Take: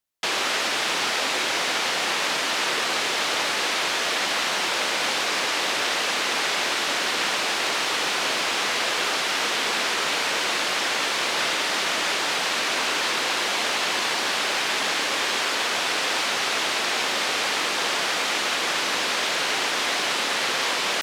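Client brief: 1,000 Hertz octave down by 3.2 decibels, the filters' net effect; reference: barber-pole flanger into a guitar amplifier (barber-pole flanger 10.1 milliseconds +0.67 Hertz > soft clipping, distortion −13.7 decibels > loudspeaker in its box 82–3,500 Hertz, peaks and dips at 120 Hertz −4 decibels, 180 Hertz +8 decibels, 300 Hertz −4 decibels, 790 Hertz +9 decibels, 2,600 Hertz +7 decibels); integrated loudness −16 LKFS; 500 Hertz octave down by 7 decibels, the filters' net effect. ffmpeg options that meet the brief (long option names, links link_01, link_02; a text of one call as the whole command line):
ffmpeg -i in.wav -filter_complex "[0:a]equalizer=frequency=500:width_type=o:gain=-9,equalizer=frequency=1000:width_type=o:gain=-6.5,asplit=2[link_01][link_02];[link_02]adelay=10.1,afreqshift=0.67[link_03];[link_01][link_03]amix=inputs=2:normalize=1,asoftclip=threshold=-27dB,highpass=82,equalizer=frequency=120:width_type=q:width=4:gain=-4,equalizer=frequency=180:width_type=q:width=4:gain=8,equalizer=frequency=300:width_type=q:width=4:gain=-4,equalizer=frequency=790:width_type=q:width=4:gain=9,equalizer=frequency=2600:width_type=q:width=4:gain=7,lowpass=frequency=3500:width=0.5412,lowpass=frequency=3500:width=1.3066,volume=13dB" out.wav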